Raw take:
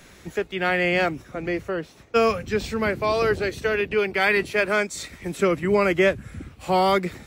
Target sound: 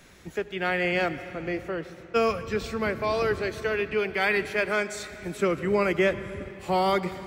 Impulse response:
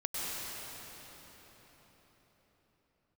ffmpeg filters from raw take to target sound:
-filter_complex "[0:a]asplit=2[link_01][link_02];[1:a]atrim=start_sample=2205,asetrate=66150,aresample=44100,lowpass=6500[link_03];[link_02][link_03]afir=irnorm=-1:irlink=0,volume=-13.5dB[link_04];[link_01][link_04]amix=inputs=2:normalize=0,volume=-5dB"

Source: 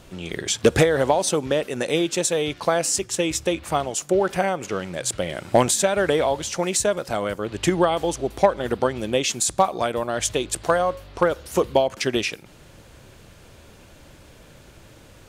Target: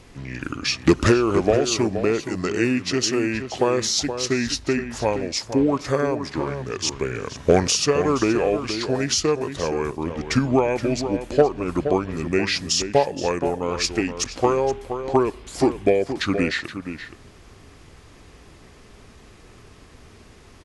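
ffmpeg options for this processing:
ffmpeg -i in.wav -filter_complex "[0:a]asplit=2[link_01][link_02];[link_02]adelay=349.9,volume=-9dB,highshelf=frequency=4000:gain=-7.87[link_03];[link_01][link_03]amix=inputs=2:normalize=0,asetrate=32667,aresample=44100" out.wav

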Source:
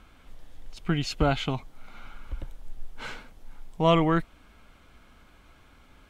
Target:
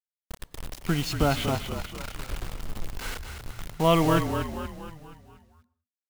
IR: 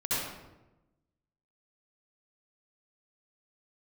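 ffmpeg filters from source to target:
-filter_complex "[0:a]acrusher=bits=5:mix=0:aa=0.000001,asplit=7[link_01][link_02][link_03][link_04][link_05][link_06][link_07];[link_02]adelay=237,afreqshift=-42,volume=-7dB[link_08];[link_03]adelay=474,afreqshift=-84,volume=-12.8dB[link_09];[link_04]adelay=711,afreqshift=-126,volume=-18.7dB[link_10];[link_05]adelay=948,afreqshift=-168,volume=-24.5dB[link_11];[link_06]adelay=1185,afreqshift=-210,volume=-30.4dB[link_12];[link_07]adelay=1422,afreqshift=-252,volume=-36.2dB[link_13];[link_01][link_08][link_09][link_10][link_11][link_12][link_13]amix=inputs=7:normalize=0,asplit=2[link_14][link_15];[1:a]atrim=start_sample=2205,afade=type=out:start_time=0.25:duration=0.01,atrim=end_sample=11466,adelay=27[link_16];[link_15][link_16]afir=irnorm=-1:irlink=0,volume=-27.5dB[link_17];[link_14][link_17]amix=inputs=2:normalize=0"

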